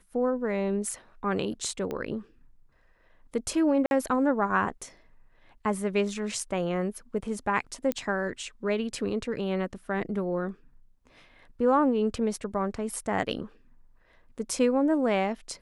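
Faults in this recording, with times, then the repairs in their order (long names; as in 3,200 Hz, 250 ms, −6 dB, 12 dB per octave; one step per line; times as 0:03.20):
0:01.91: click −21 dBFS
0:03.86–0:03.91: drop-out 51 ms
0:07.92: click −14 dBFS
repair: click removal
repair the gap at 0:03.86, 51 ms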